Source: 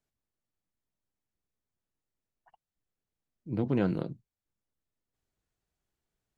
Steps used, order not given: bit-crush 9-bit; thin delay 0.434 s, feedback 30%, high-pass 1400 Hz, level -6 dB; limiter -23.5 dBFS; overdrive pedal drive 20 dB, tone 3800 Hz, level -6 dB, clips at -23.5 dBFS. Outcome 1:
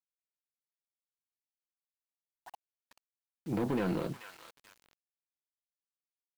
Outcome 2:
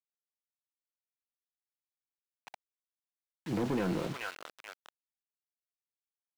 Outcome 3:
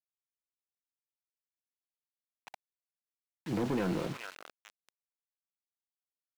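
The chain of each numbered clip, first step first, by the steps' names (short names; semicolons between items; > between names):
limiter > overdrive pedal > thin delay > bit-crush; thin delay > limiter > bit-crush > overdrive pedal; limiter > thin delay > bit-crush > overdrive pedal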